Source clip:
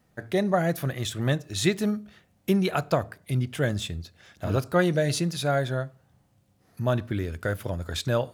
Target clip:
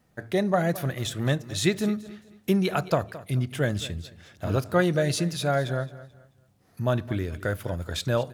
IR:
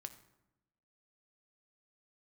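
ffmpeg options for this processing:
-af "aecho=1:1:218|436|654:0.141|0.0424|0.0127"

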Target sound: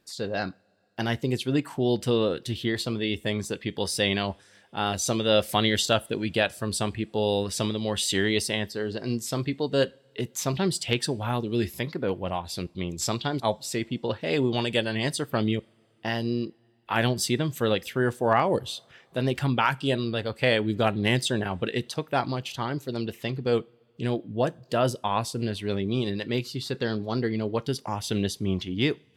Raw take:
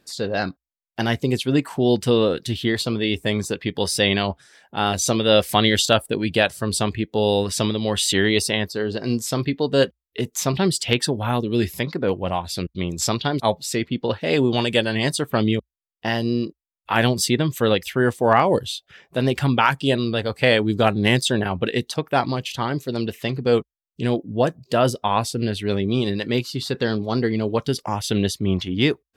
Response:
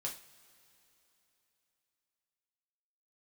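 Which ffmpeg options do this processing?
-filter_complex "[0:a]asplit=2[a][b];[1:a]atrim=start_sample=2205,asetrate=40572,aresample=44100[c];[b][c]afir=irnorm=-1:irlink=0,volume=-17.5dB[d];[a][d]amix=inputs=2:normalize=0,volume=-6.5dB"

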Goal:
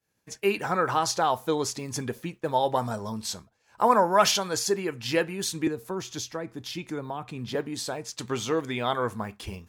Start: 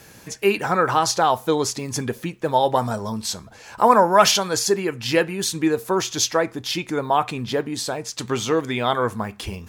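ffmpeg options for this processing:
-filter_complex "[0:a]agate=range=-33dB:threshold=-31dB:ratio=3:detection=peak,asettb=1/sr,asplit=3[a][b][c];[a]atrim=end=5.674[d];[b]atrim=start=5.67:end=7.55,asetpts=PTS-STARTPTS,afade=t=in:d=0.004:c=qsin,afade=t=out:st=1.876:d=0.004:c=qsin,acrossover=split=300[e][f];[f]acompressor=threshold=-30dB:ratio=3[g];[e][g]amix=inputs=2:normalize=0[h];[c]atrim=start=7.546[i];[d][h]acrossfade=d=0.004:c1=hsin:c2=qsin[j];[j][i]acrossfade=d=0.004:c1=qsin:c2=hsin,volume=-6dB"

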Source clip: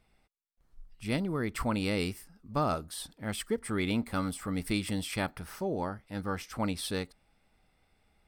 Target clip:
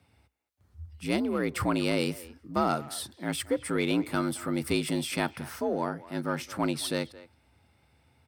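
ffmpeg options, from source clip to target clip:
-filter_complex "[0:a]afreqshift=61,asplit=2[a][b];[b]asoftclip=type=tanh:threshold=-25dB,volume=-5dB[c];[a][c]amix=inputs=2:normalize=0,asplit=2[d][e];[e]adelay=220,highpass=300,lowpass=3.4k,asoftclip=type=hard:threshold=-22.5dB,volume=-17dB[f];[d][f]amix=inputs=2:normalize=0"

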